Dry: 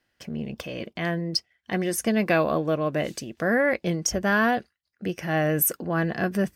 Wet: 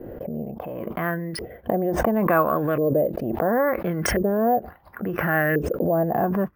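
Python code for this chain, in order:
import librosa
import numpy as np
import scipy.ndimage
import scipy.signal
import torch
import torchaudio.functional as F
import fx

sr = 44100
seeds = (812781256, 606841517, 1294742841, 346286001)

y = fx.filter_lfo_lowpass(x, sr, shape='saw_up', hz=0.72, low_hz=420.0, high_hz=1900.0, q=3.8)
y = np.repeat(y[::3], 3)[:len(y)]
y = fx.pre_swell(y, sr, db_per_s=28.0)
y = y * librosa.db_to_amplitude(-1.0)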